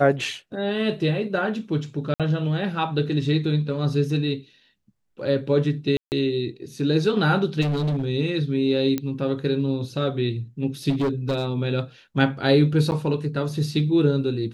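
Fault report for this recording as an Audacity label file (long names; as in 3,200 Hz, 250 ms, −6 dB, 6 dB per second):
2.140000	2.200000	drop-out 57 ms
5.970000	6.120000	drop-out 149 ms
7.610000	8.040000	clipping −20.5 dBFS
8.980000	8.980000	click −12 dBFS
10.890000	11.460000	clipping −19 dBFS
12.910000	12.920000	drop-out 9.1 ms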